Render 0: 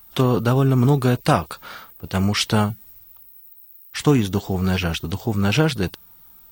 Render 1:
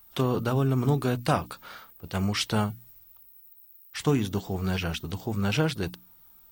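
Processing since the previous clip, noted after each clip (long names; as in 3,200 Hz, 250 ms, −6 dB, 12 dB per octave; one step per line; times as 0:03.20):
mains-hum notches 60/120/180/240/300 Hz
level −7 dB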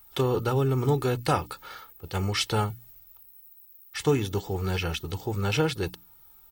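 comb filter 2.3 ms, depth 54%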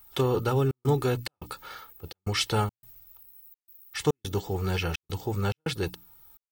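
gate pattern "xxxxx.xxx." 106 BPM −60 dB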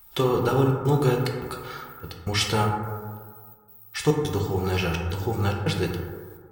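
dense smooth reverb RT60 1.7 s, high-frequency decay 0.3×, DRR 1 dB
level +2 dB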